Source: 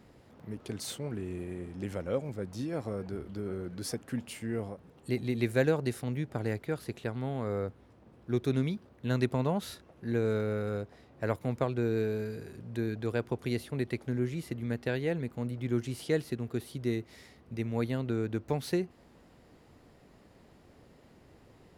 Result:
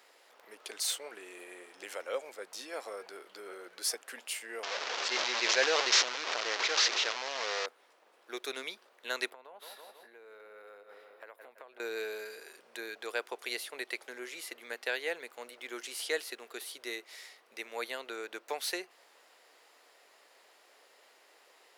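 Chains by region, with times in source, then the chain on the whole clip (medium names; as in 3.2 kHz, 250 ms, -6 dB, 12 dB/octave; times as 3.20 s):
4.63–7.66 s: one-bit delta coder 32 kbps, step -28.5 dBFS + decay stretcher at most 20 dB/s
9.30–11.80 s: peaking EQ 6.6 kHz -14.5 dB 1.5 oct + feedback delay 164 ms, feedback 55%, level -14 dB + compression 16:1, threshold -41 dBFS
whole clip: high-pass 430 Hz 24 dB/octave; tilt shelf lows -7.5 dB, about 800 Hz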